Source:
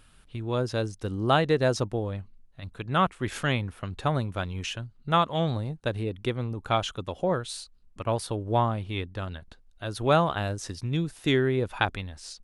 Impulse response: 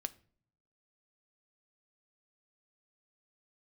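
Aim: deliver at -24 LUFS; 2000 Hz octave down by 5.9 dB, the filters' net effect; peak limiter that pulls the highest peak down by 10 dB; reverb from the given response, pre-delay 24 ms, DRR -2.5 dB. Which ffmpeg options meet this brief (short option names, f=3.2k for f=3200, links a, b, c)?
-filter_complex "[0:a]equalizer=f=2k:t=o:g=-8.5,alimiter=limit=-19.5dB:level=0:latency=1,asplit=2[a][b];[1:a]atrim=start_sample=2205,adelay=24[c];[b][c]afir=irnorm=-1:irlink=0,volume=4dB[d];[a][d]amix=inputs=2:normalize=0,volume=3.5dB"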